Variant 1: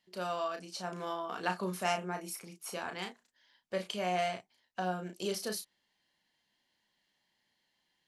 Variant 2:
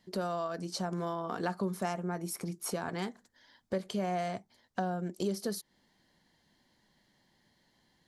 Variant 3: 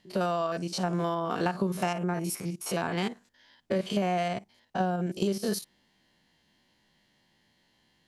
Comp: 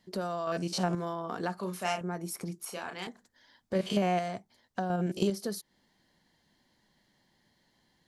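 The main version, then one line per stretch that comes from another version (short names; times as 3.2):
2
0.47–0.95 from 3
1.58–2.01 from 1
2.65–3.07 from 1
3.75–4.19 from 3
4.9–5.3 from 3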